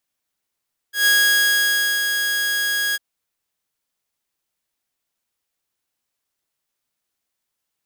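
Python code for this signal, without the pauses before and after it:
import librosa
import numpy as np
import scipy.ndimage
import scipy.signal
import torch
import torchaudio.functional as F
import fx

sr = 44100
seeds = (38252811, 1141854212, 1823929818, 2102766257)

y = fx.adsr_tone(sr, wave='saw', hz=1650.0, attack_ms=132.0, decay_ms=943.0, sustain_db=-6.5, held_s=2.02, release_ms=30.0, level_db=-10.0)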